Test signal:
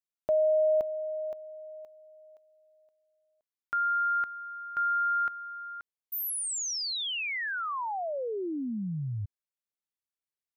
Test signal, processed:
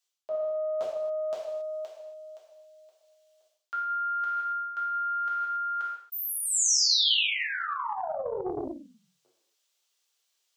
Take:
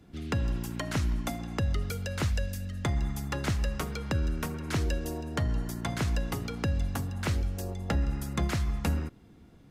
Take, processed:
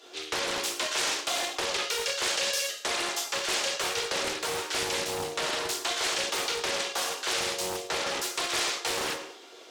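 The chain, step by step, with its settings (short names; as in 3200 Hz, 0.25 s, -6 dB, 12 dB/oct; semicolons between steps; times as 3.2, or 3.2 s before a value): steep high-pass 360 Hz 48 dB/oct; non-linear reverb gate 0.3 s falling, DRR -5.5 dB; reverse; compressor 12:1, threshold -37 dBFS; reverse; band shelf 4600 Hz +9 dB; Doppler distortion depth 0.54 ms; gain +8 dB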